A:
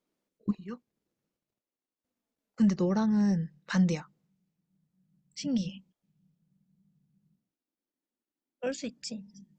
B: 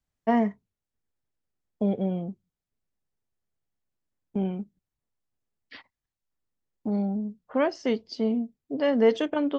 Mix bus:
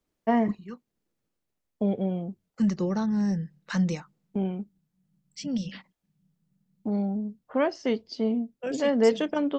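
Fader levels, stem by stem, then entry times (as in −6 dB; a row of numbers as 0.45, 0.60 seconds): 0.0, −0.5 decibels; 0.00, 0.00 seconds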